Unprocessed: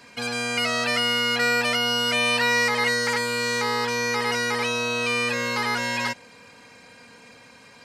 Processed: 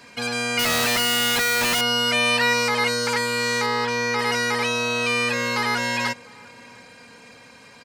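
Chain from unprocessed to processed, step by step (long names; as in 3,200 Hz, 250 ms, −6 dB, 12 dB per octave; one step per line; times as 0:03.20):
0:00.59–0:01.81: comparator with hysteresis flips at −41.5 dBFS
0:02.53–0:03.16: notch filter 1,900 Hz, Q 11
0:03.66–0:04.19: high-shelf EQ 8,200 Hz −11.5 dB
slap from a distant wall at 120 metres, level −23 dB
level +2 dB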